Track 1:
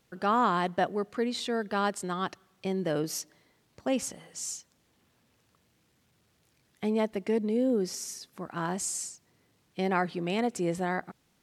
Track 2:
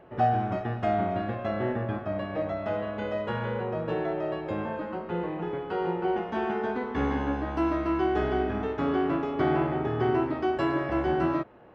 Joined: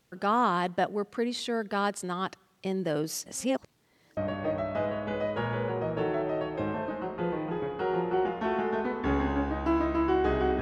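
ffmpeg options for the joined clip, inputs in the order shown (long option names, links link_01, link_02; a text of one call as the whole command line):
ffmpeg -i cue0.wav -i cue1.wav -filter_complex "[0:a]apad=whole_dur=10.61,atrim=end=10.61,asplit=2[link_01][link_02];[link_01]atrim=end=3.262[link_03];[link_02]atrim=start=3.258:end=4.172,asetpts=PTS-STARTPTS,areverse[link_04];[1:a]atrim=start=2.078:end=8.52[link_05];[link_03][link_04]acrossfade=duration=0.004:curve1=hsin:curve2=hsin[link_06];[link_06][link_05]acrossfade=duration=0.004:curve1=hsin:curve2=hsin" out.wav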